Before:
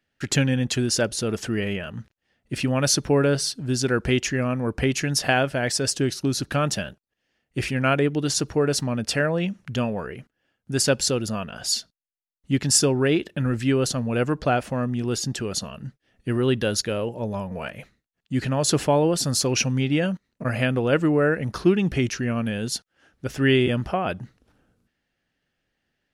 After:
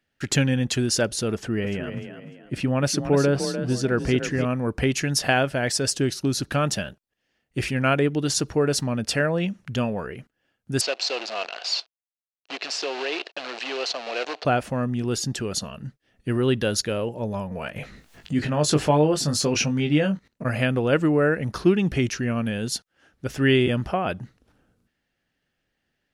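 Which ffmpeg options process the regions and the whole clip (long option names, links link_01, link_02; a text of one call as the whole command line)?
ffmpeg -i in.wav -filter_complex "[0:a]asettb=1/sr,asplit=3[link_01][link_02][link_03];[link_01]atrim=end=1.344[link_04];[link_02]atrim=start=1.34:end=4.45,asetpts=PTS-STARTPTS,afade=type=in:duration=0.004:curve=qsin,afade=type=out:start_time=3.106:duration=0.004:curve=qsin,highshelf=frequency=2600:gain=-8,asplit=5[link_05][link_06][link_07][link_08][link_09];[link_06]adelay=299,afreqshift=32,volume=-9dB[link_10];[link_07]adelay=598,afreqshift=64,volume=-18.1dB[link_11];[link_08]adelay=897,afreqshift=96,volume=-27.2dB[link_12];[link_09]adelay=1196,afreqshift=128,volume=-36.4dB[link_13];[link_05][link_10][link_11][link_12][link_13]amix=inputs=5:normalize=0,atrim=end_sample=137151[link_14];[link_03]atrim=start=4.446[link_15];[link_04][link_14]acrossfade=duration=0.004:curve1=hsin:curve2=qsin[link_16];[link_16][link_15]acrossfade=duration=0.004:curve1=qsin:curve2=hsin,asettb=1/sr,asplit=3[link_17][link_18][link_19];[link_17]atrim=end=10.814[link_20];[link_18]atrim=start=10.81:end=14.45,asetpts=PTS-STARTPTS,afade=type=in:duration=0.004:curve=qsin,afade=type=out:start_time=3.636:duration=0.004:curve=qsin,acompressor=threshold=-23dB:ratio=4:attack=3.2:release=140:knee=1:detection=peak,acrusher=bits=6:dc=4:mix=0:aa=0.000001,highpass=frequency=400:width=0.5412,highpass=frequency=400:width=1.3066,equalizer=frequency=700:width_type=q:width=4:gain=7,equalizer=frequency=2700:width_type=q:width=4:gain=8,equalizer=frequency=4200:width_type=q:width=4:gain=7,lowpass=frequency=5500:width=0.5412,lowpass=frequency=5500:width=1.3066[link_21];[link_19]atrim=start=14.446[link_22];[link_20][link_21]acrossfade=duration=0.004:curve1=hsin:curve2=qsin[link_23];[link_23][link_22]acrossfade=duration=0.004:curve1=qsin:curve2=hsin,asettb=1/sr,asplit=3[link_24][link_25][link_26];[link_24]atrim=end=17.764[link_27];[link_25]atrim=start=17.76:end=20.28,asetpts=PTS-STARTPTS,afade=type=in:duration=0.004:curve=qsin,afade=type=out:start_time=2.516:duration=0.004:curve=qsin,highshelf=frequency=9700:gain=-10,acompressor=mode=upward:threshold=-24dB:ratio=2.5:attack=3.2:release=140:knee=2.83:detection=peak,asplit=2[link_28][link_29];[link_29]adelay=20,volume=-6dB[link_30];[link_28][link_30]amix=inputs=2:normalize=0,atrim=end_sample=111132[link_31];[link_26]atrim=start=20.276[link_32];[link_27][link_31]acrossfade=duration=0.004:curve1=hsin:curve2=qsin[link_33];[link_33][link_32]acrossfade=duration=0.004:curve1=qsin:curve2=hsin" out.wav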